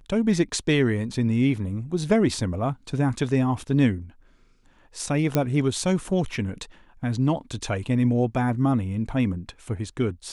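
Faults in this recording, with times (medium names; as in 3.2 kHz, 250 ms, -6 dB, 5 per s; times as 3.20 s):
5.35 s: pop -8 dBFS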